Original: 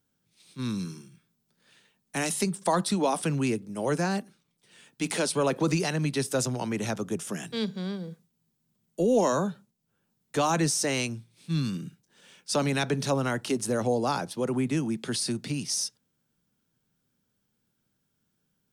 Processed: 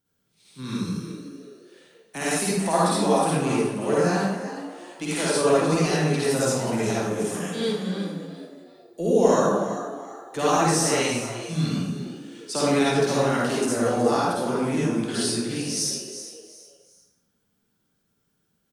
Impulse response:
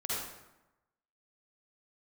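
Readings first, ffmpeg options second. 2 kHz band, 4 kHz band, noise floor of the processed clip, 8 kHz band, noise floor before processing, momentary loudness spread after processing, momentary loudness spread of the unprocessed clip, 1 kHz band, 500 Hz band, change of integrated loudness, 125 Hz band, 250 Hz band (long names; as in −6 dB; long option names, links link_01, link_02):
+4.5 dB, +4.0 dB, −72 dBFS, +4.0 dB, −77 dBFS, 16 LU, 10 LU, +6.0 dB, +6.5 dB, +4.5 dB, +3.0 dB, +4.5 dB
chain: -filter_complex "[0:a]bandreject=frequency=50:width_type=h:width=6,bandreject=frequency=100:width_type=h:width=6,bandreject=frequency=150:width_type=h:width=6,bandreject=frequency=200:width_type=h:width=6,asplit=4[link_01][link_02][link_03][link_04];[link_02]adelay=367,afreqshift=89,volume=-12dB[link_05];[link_03]adelay=734,afreqshift=178,volume=-21.4dB[link_06];[link_04]adelay=1101,afreqshift=267,volume=-30.7dB[link_07];[link_01][link_05][link_06][link_07]amix=inputs=4:normalize=0[link_08];[1:a]atrim=start_sample=2205[link_09];[link_08][link_09]afir=irnorm=-1:irlink=0"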